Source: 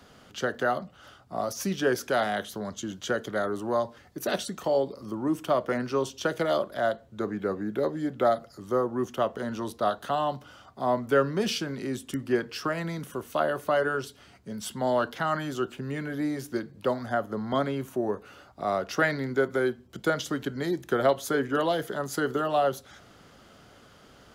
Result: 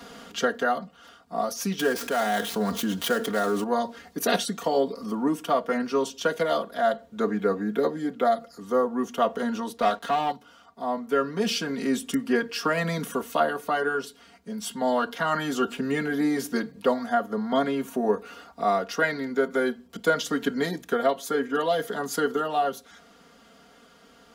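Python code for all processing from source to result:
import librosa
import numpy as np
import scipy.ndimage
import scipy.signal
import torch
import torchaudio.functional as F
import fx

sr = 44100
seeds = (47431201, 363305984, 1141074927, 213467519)

y = fx.chain(x, sr, fx.dead_time(dead_ms=0.059),
    fx.env_flatten(amount_pct=50), at=(1.79, 3.64))
y = fx.chain(y, sr, fx.high_shelf(hz=12000.0, db=-10.0),
    fx.leveller(passes=2), at=(9.77, 10.32))
y = fx.low_shelf(y, sr, hz=90.0, db=-11.5)
y = y + 0.93 * np.pad(y, (int(4.3 * sr / 1000.0), 0))[:len(y)]
y = fx.rider(y, sr, range_db=10, speed_s=0.5)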